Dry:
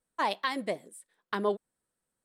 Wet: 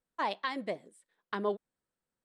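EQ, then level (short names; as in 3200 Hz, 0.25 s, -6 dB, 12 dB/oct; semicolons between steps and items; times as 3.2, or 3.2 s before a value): air absorption 75 m; -3.0 dB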